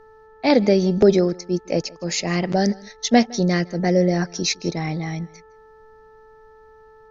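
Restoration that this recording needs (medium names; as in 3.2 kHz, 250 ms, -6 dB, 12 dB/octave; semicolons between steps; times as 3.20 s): de-hum 437.8 Hz, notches 4; expander -41 dBFS, range -21 dB; inverse comb 160 ms -23.5 dB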